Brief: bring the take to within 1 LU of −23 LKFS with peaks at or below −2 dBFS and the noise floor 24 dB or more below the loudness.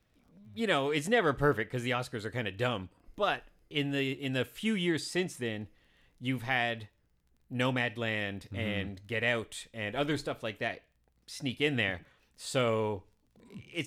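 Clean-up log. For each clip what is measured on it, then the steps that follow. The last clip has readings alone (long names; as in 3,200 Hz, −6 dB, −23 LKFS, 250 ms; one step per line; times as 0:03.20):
crackle rate 16 per second; integrated loudness −32.5 LKFS; sample peak −13.5 dBFS; target loudness −23.0 LKFS
→ click removal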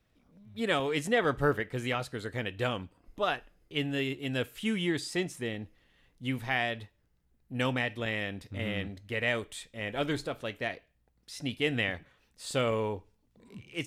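crackle rate 0 per second; integrated loudness −32.5 LKFS; sample peak −13.5 dBFS; target loudness −23.0 LKFS
→ level +9.5 dB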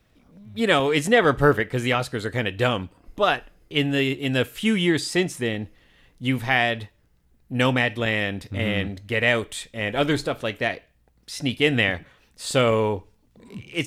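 integrated loudness −23.0 LKFS; sample peak −4.0 dBFS; background noise floor −62 dBFS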